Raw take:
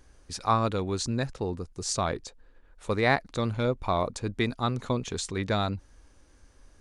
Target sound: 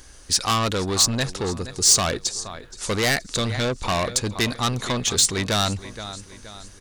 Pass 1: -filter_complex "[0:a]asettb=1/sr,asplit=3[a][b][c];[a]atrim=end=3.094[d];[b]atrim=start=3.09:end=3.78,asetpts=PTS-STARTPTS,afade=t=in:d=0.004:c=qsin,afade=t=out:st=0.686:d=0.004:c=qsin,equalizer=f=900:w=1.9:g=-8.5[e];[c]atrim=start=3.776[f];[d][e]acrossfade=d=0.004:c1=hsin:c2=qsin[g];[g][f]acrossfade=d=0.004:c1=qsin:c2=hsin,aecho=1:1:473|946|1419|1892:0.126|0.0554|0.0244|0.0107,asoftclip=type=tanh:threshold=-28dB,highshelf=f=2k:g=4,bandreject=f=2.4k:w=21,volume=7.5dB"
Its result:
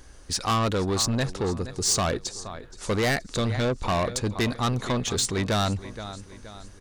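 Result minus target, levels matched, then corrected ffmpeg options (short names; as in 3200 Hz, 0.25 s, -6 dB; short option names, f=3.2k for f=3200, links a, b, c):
4000 Hz band -3.0 dB
-filter_complex "[0:a]asettb=1/sr,asplit=3[a][b][c];[a]atrim=end=3.094[d];[b]atrim=start=3.09:end=3.78,asetpts=PTS-STARTPTS,afade=t=in:d=0.004:c=qsin,afade=t=out:st=0.686:d=0.004:c=qsin,equalizer=f=900:w=1.9:g=-8.5[e];[c]atrim=start=3.776[f];[d][e]acrossfade=d=0.004:c1=hsin:c2=qsin[g];[g][f]acrossfade=d=0.004:c1=qsin:c2=hsin,aecho=1:1:473|946|1419|1892:0.126|0.0554|0.0244|0.0107,asoftclip=type=tanh:threshold=-28dB,highshelf=f=2k:g=13,bandreject=f=2.4k:w=21,volume=7.5dB"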